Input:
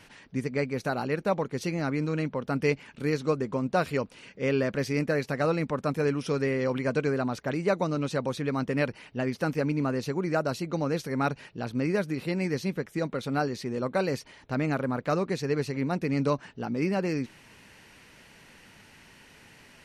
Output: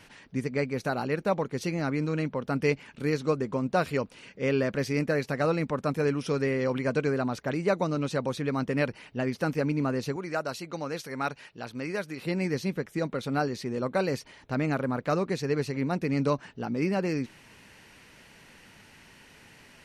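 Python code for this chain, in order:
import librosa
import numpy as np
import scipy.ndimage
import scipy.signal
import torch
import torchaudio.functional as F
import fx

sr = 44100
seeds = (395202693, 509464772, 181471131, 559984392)

y = fx.low_shelf(x, sr, hz=480.0, db=-10.0, at=(10.16, 12.24))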